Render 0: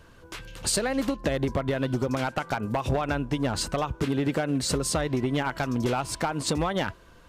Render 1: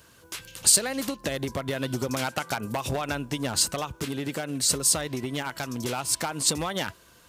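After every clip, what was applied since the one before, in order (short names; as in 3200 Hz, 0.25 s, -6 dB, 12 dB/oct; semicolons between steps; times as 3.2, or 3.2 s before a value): HPF 73 Hz; pre-emphasis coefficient 0.8; vocal rider within 4 dB 2 s; gain +7.5 dB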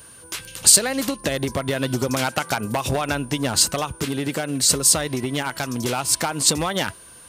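whine 9300 Hz -50 dBFS; gain +6 dB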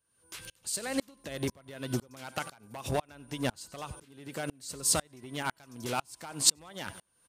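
feedback echo 94 ms, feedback 45%, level -21 dB; dB-ramp tremolo swelling 2 Hz, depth 33 dB; gain -4 dB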